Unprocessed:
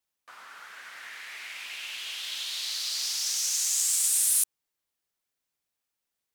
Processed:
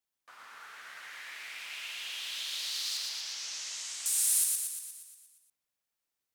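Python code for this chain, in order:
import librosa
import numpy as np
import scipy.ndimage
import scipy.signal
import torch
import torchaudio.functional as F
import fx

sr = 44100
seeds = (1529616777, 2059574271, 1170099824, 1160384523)

y = fx.lowpass(x, sr, hz=3800.0, slope=12, at=(2.97, 4.06))
y = fx.echo_feedback(y, sr, ms=118, feedback_pct=59, wet_db=-3.0)
y = y * librosa.db_to_amplitude(-5.0)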